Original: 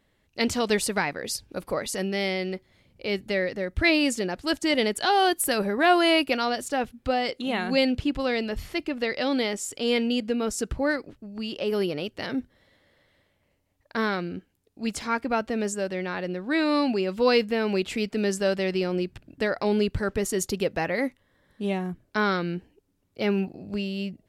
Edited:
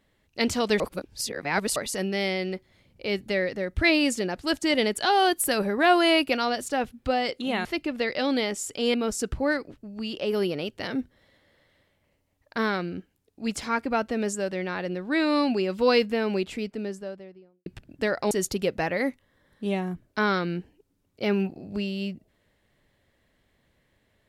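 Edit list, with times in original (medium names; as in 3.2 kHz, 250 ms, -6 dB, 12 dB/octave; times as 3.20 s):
0.80–1.76 s: reverse
7.65–8.67 s: delete
9.96–10.33 s: delete
17.36–19.05 s: studio fade out
19.70–20.29 s: delete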